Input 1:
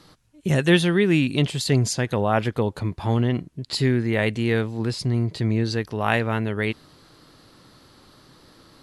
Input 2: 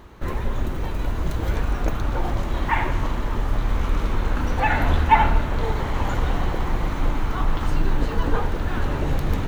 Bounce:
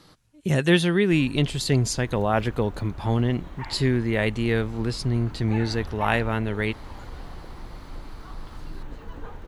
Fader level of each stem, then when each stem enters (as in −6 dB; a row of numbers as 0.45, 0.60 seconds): −1.5, −16.5 decibels; 0.00, 0.90 seconds